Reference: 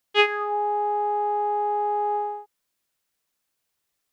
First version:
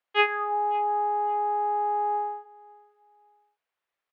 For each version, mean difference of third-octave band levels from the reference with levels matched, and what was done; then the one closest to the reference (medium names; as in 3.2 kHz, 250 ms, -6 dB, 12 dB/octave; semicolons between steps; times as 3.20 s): 1.0 dB: three-band isolator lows -15 dB, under 430 Hz, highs -20 dB, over 2.9 kHz; feedback delay 558 ms, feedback 25%, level -22.5 dB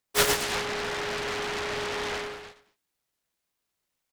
24.0 dB: on a send: feedback delay 103 ms, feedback 24%, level -3.5 dB; on the sum: delay time shaken by noise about 1.2 kHz, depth 0.34 ms; trim -4 dB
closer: first